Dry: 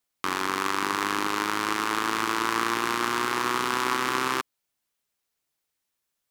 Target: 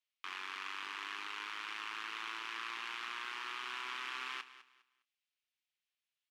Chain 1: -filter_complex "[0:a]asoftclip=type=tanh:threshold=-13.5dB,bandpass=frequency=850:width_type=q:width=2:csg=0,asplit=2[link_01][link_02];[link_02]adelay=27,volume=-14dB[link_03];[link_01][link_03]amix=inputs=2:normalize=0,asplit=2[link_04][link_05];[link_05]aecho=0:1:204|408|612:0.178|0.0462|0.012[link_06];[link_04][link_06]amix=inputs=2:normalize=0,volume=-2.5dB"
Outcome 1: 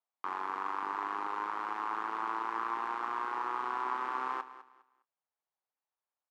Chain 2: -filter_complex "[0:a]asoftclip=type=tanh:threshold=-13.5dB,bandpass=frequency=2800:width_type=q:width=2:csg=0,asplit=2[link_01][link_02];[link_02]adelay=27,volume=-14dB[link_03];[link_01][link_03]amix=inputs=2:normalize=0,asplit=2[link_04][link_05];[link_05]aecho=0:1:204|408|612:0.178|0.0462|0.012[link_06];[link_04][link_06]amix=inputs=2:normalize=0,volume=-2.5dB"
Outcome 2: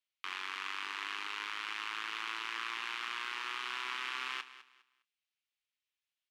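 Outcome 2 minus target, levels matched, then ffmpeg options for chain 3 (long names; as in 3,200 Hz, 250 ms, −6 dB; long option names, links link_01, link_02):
soft clipping: distortion −8 dB
-filter_complex "[0:a]asoftclip=type=tanh:threshold=-21.5dB,bandpass=frequency=2800:width_type=q:width=2:csg=0,asplit=2[link_01][link_02];[link_02]adelay=27,volume=-14dB[link_03];[link_01][link_03]amix=inputs=2:normalize=0,asplit=2[link_04][link_05];[link_05]aecho=0:1:204|408|612:0.178|0.0462|0.012[link_06];[link_04][link_06]amix=inputs=2:normalize=0,volume=-2.5dB"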